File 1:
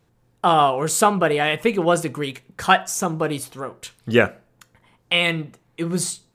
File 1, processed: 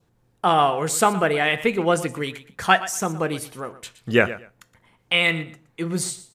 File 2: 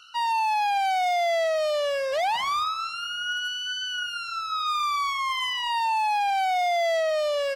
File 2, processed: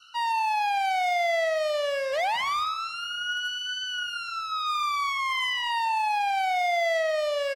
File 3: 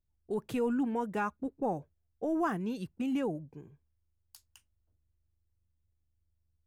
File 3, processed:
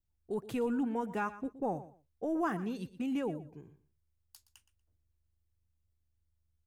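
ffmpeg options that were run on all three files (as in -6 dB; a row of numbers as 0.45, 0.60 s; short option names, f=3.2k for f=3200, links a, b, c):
-filter_complex "[0:a]adynamicequalizer=threshold=0.00794:dfrequency=2000:dqfactor=3:tfrequency=2000:tqfactor=3:attack=5:release=100:ratio=0.375:range=2.5:mode=boostabove:tftype=bell,asplit=2[a][b];[b]aecho=0:1:119|238:0.168|0.0319[c];[a][c]amix=inputs=2:normalize=0,volume=-2dB"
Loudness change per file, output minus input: -1.0, -1.0, -2.0 LU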